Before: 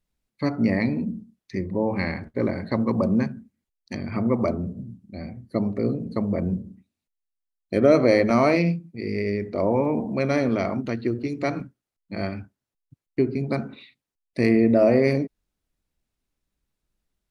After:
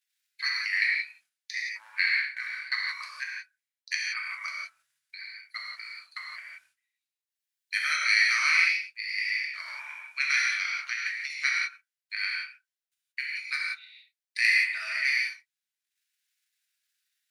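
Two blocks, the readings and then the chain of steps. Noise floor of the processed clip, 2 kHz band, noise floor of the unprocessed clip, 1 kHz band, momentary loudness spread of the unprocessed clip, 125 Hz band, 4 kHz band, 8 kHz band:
below −85 dBFS, +9.5 dB, below −85 dBFS, −9.5 dB, 17 LU, below −40 dB, +10.5 dB, can't be measured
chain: transient designer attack +5 dB, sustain −11 dB
elliptic high-pass filter 1,600 Hz, stop band 70 dB
reverb whose tail is shaped and stops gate 200 ms flat, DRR −3.5 dB
level +4.5 dB

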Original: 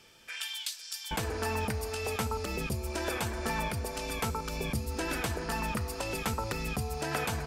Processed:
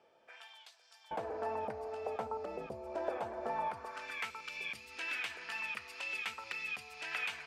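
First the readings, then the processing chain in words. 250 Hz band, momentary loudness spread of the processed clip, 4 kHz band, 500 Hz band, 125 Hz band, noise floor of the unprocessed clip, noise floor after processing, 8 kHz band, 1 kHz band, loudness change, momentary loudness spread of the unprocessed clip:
−15.0 dB, 8 LU, −8.5 dB, −5.0 dB, −24.0 dB, −46 dBFS, −67 dBFS, −18.0 dB, −4.5 dB, −6.0 dB, 3 LU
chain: band-pass filter sweep 650 Hz → 2,500 Hz, 0:03.51–0:04.32
level +2.5 dB

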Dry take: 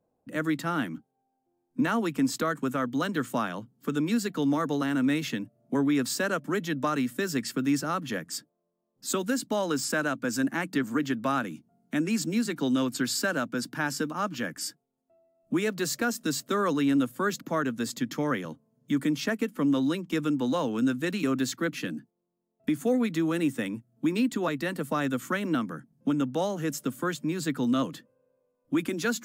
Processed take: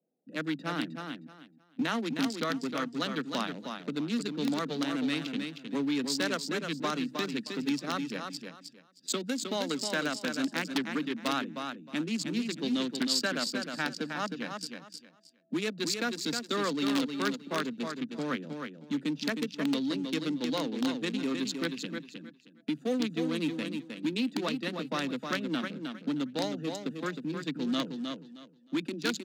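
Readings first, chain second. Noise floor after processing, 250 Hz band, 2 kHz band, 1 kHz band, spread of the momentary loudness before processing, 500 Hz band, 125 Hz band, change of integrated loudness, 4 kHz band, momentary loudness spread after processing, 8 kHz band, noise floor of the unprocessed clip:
−61 dBFS, −4.5 dB, −3.0 dB, −4.5 dB, 7 LU, −4.5 dB, −6.5 dB, −4.0 dB, +3.0 dB, 9 LU, −4.5 dB, −78 dBFS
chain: adaptive Wiener filter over 41 samples
repeating echo 312 ms, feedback 22%, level −6 dB
in parallel at −5.5 dB: wrap-around overflow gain 17 dB
on the sum: Butterworth high-pass 150 Hz 48 dB per octave
parametric band 4,100 Hz +14.5 dB 1.5 octaves
level −8.5 dB

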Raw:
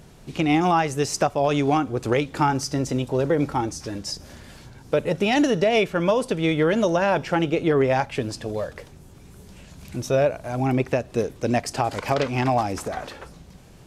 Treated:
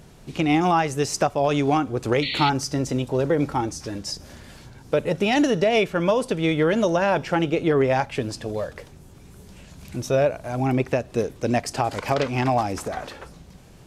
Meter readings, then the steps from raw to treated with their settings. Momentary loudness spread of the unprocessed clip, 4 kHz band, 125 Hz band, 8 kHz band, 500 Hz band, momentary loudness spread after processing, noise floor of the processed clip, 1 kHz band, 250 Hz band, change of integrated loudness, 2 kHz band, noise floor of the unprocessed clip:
11 LU, +1.5 dB, 0.0 dB, 0.0 dB, 0.0 dB, 11 LU, −47 dBFS, 0.0 dB, 0.0 dB, 0.0 dB, 0.0 dB, −47 dBFS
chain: sound drawn into the spectrogram noise, 0:02.22–0:02.50, 1,900–4,500 Hz −28 dBFS

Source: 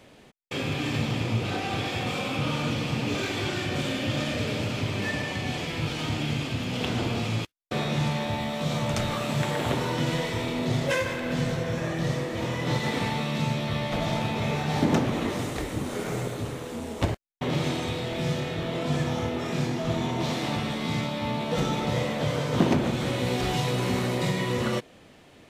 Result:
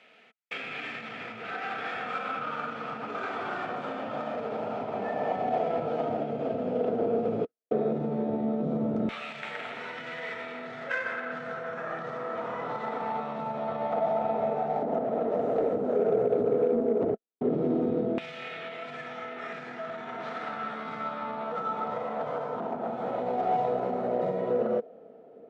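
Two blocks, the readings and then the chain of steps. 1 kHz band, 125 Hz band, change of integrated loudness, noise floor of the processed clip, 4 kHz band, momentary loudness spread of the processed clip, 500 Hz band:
+1.0 dB, −15.5 dB, −3.0 dB, −51 dBFS, −15.5 dB, 10 LU, +2.0 dB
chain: running median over 3 samples
hollow resonant body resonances 220/450/660/1,300 Hz, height 15 dB, ringing for 30 ms
speech leveller 0.5 s
brickwall limiter −12 dBFS, peak gain reduction 11.5 dB
auto-filter band-pass saw down 0.11 Hz 310–2,500 Hz
harmonic generator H 7 −35 dB, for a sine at −14 dBFS

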